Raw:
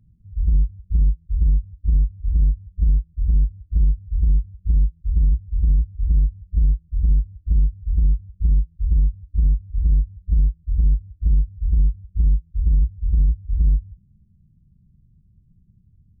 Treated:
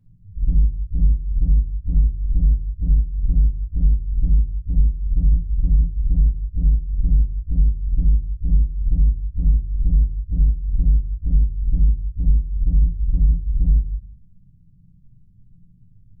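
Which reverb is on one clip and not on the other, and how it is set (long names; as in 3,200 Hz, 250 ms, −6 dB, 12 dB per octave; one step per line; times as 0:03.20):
rectangular room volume 130 cubic metres, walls furnished, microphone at 2 metres
level −3.5 dB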